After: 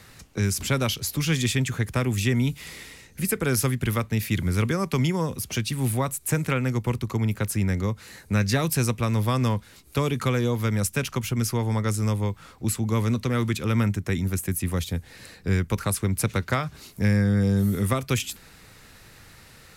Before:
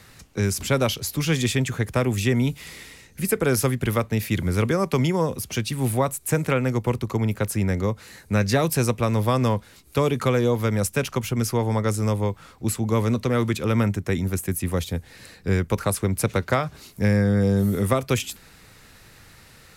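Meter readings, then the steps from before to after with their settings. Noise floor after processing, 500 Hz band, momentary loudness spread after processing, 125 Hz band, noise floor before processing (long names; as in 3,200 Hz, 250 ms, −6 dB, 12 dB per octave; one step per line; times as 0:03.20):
−51 dBFS, −6.0 dB, 7 LU, −0.5 dB, −51 dBFS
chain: dynamic equaliser 580 Hz, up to −7 dB, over −36 dBFS, Q 0.81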